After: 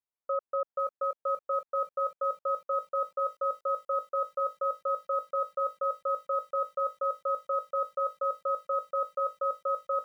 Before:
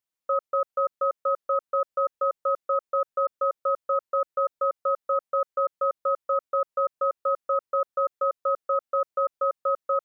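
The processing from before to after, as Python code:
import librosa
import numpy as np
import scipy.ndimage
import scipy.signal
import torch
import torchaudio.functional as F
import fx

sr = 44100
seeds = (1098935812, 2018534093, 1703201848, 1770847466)

y = scipy.signal.sosfilt(scipy.signal.butter(2, 1200.0, 'lowpass', fs=sr, output='sos'), x)
y = fx.low_shelf(y, sr, hz=310.0, db=-6.5)
y = fx.echo_crushed(y, sr, ms=500, feedback_pct=55, bits=9, wet_db=-11.0)
y = F.gain(torch.from_numpy(y), -3.0).numpy()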